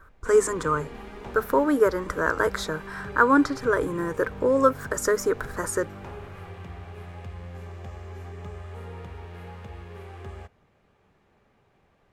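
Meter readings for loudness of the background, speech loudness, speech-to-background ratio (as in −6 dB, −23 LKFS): −41.0 LKFS, −24.0 LKFS, 17.0 dB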